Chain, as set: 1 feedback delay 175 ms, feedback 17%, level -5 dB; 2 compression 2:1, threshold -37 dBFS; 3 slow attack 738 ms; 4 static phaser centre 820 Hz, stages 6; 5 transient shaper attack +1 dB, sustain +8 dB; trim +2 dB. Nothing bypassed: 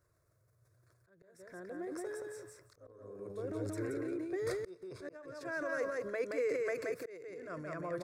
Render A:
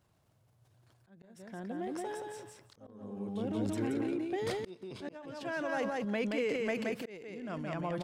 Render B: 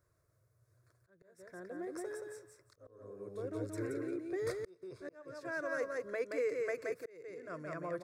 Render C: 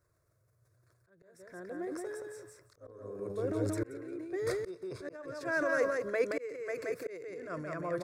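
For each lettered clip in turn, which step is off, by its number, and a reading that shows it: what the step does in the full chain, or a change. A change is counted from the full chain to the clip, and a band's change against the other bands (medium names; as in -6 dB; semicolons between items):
4, momentary loudness spread change -2 LU; 5, momentary loudness spread change -2 LU; 2, mean gain reduction 4.0 dB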